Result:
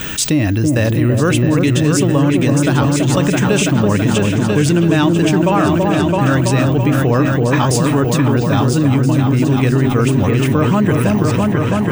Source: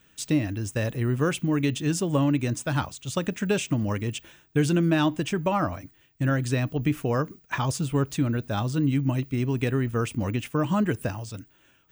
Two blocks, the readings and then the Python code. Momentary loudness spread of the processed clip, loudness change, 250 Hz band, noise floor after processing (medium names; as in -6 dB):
2 LU, +12.5 dB, +12.5 dB, -16 dBFS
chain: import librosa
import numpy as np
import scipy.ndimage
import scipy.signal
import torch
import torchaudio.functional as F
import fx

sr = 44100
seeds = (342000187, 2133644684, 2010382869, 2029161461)

y = fx.echo_opening(x, sr, ms=331, hz=750, octaves=2, feedback_pct=70, wet_db=-3)
y = fx.env_flatten(y, sr, amount_pct=70)
y = F.gain(torch.from_numpy(y), 6.0).numpy()